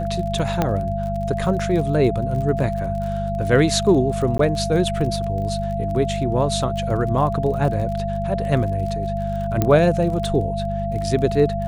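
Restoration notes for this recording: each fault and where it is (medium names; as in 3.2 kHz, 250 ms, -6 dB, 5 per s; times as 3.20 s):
crackle 37 per s -29 dBFS
hum 50 Hz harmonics 4 -26 dBFS
whine 680 Hz -25 dBFS
0.62 s: pop -6 dBFS
4.38–4.39 s: dropout 13 ms
9.62 s: pop -6 dBFS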